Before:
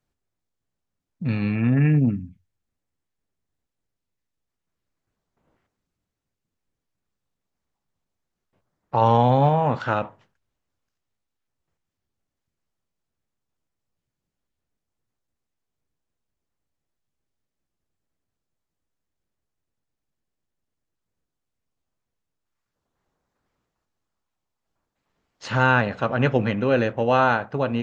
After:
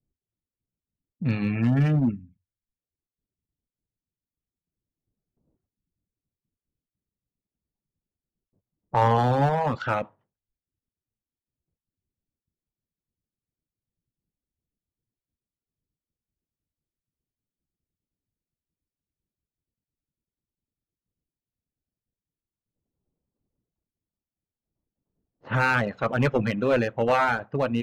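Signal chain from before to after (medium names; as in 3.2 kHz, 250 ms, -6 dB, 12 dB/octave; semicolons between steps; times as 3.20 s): one-sided clip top -16.5 dBFS; reverb removal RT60 0.69 s; level-controlled noise filter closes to 340 Hz, open at -23 dBFS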